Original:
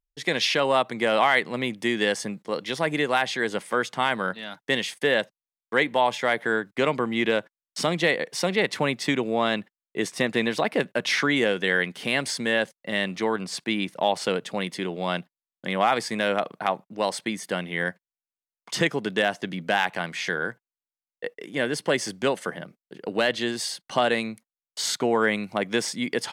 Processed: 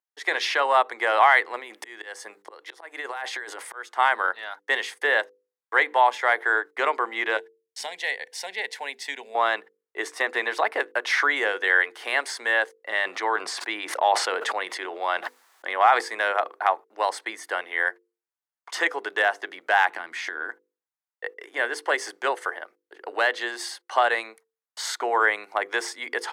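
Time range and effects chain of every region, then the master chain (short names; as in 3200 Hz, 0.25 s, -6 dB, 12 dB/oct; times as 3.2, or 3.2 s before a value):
1.59–3.96 high shelf 7100 Hz +5.5 dB + auto swell 0.614 s + negative-ratio compressor -33 dBFS
7.37–9.35 bell 570 Hz -11.5 dB 0.97 oct + fixed phaser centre 330 Hz, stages 6
12.89–16.01 high shelf 12000 Hz -8.5 dB + sustainer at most 26 dB/s
19.88–20.49 resonant low shelf 360 Hz +12.5 dB, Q 1.5 + compressor 12:1, threshold -26 dBFS
whole clip: steep high-pass 350 Hz 36 dB/oct; band shelf 1200 Hz +9 dB; notches 50/100/150/200/250/300/350/400/450/500 Hz; gain -4 dB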